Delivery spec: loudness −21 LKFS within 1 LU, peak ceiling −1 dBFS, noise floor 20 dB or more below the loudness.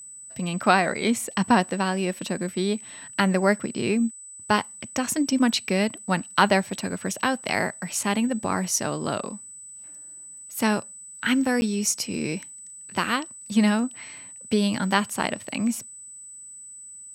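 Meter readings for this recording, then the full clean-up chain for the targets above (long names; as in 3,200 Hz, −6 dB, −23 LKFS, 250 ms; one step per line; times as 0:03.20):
number of dropouts 1; longest dropout 10 ms; interfering tone 8,000 Hz; level of the tone −40 dBFS; integrated loudness −25.0 LKFS; sample peak −2.5 dBFS; target loudness −21.0 LKFS
→ repair the gap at 0:11.61, 10 ms
notch filter 8,000 Hz, Q 30
level +4 dB
brickwall limiter −1 dBFS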